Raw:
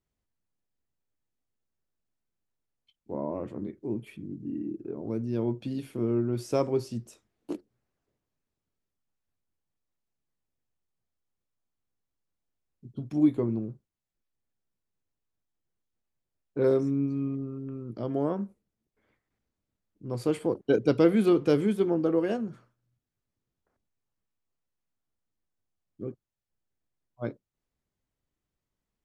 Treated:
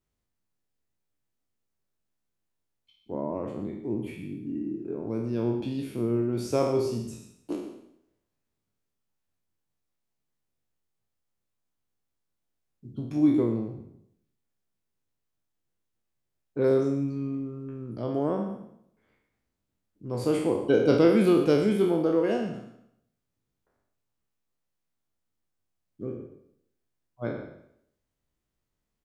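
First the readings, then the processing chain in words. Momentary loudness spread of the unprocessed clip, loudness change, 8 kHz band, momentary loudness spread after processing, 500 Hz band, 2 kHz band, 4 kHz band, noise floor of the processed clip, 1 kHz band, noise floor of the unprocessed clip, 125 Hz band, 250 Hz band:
17 LU, +1.5 dB, can't be measured, 17 LU, +2.5 dB, +3.5 dB, +4.0 dB, −82 dBFS, +3.0 dB, below −85 dBFS, +1.0 dB, +1.5 dB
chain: peak hold with a decay on every bin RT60 0.73 s
single-tap delay 121 ms −12.5 dB

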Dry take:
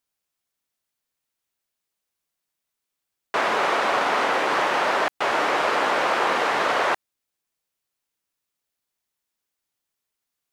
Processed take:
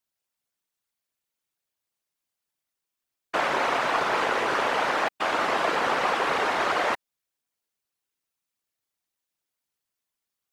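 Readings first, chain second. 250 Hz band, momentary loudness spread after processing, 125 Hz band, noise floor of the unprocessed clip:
−2.0 dB, 2 LU, +0.5 dB, −83 dBFS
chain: random phases in short frames
level −3 dB

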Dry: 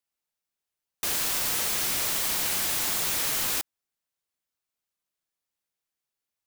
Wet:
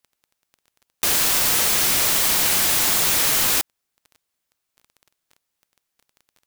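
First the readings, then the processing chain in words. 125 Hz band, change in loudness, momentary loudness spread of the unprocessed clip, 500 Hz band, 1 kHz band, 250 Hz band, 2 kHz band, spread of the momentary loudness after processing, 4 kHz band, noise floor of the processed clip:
+8.5 dB, +8.5 dB, 4 LU, +8.5 dB, +8.5 dB, +8.5 dB, +8.5 dB, 4 LU, +8.5 dB, −79 dBFS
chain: surface crackle 12 per second −45 dBFS
level +8.5 dB

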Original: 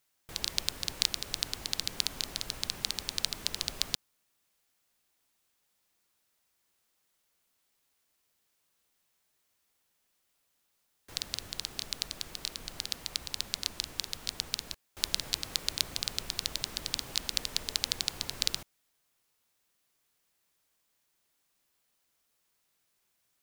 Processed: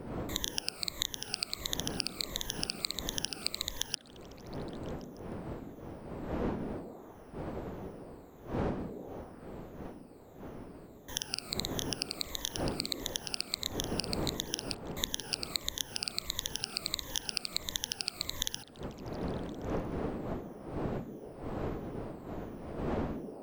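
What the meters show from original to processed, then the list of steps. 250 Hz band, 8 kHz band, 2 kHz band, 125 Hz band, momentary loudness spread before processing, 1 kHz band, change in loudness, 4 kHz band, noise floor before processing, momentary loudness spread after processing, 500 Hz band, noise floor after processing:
+14.0 dB, −1.0 dB, −0.5 dB, +10.0 dB, 6 LU, +6.5 dB, −3.0 dB, −2.5 dB, −77 dBFS, 12 LU, +13.0 dB, −52 dBFS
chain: rippled gain that drifts along the octave scale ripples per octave 1.1, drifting −1.5 Hz, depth 22 dB
wind on the microphone 450 Hz −39 dBFS
downward compressor 5 to 1, threshold −30 dBFS, peak gain reduction 14 dB
echo through a band-pass that steps 153 ms, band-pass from 220 Hz, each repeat 0.7 octaves, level −5 dB

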